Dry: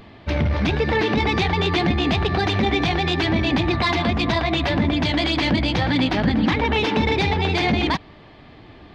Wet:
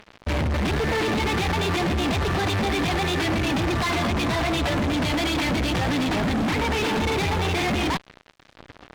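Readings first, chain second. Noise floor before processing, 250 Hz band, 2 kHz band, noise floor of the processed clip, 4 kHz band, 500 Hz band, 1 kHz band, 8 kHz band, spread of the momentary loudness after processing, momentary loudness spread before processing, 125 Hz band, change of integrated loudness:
-45 dBFS, -3.5 dB, -3.0 dB, -55 dBFS, -3.5 dB, -3.0 dB, -2.5 dB, no reading, 1 LU, 1 LU, -3.5 dB, -3.0 dB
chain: fuzz box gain 35 dB, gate -39 dBFS; treble shelf 6.5 kHz -10 dB; trim -8.5 dB

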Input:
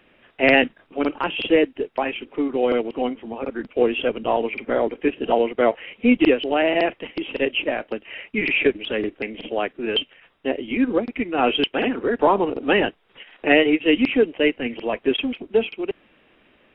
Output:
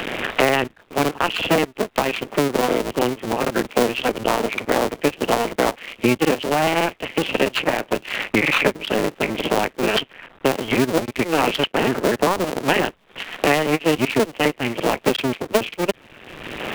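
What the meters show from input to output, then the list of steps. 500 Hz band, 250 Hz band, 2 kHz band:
0.0 dB, -0.5 dB, +1.5 dB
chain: cycle switcher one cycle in 2, muted; three bands compressed up and down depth 100%; trim +3 dB

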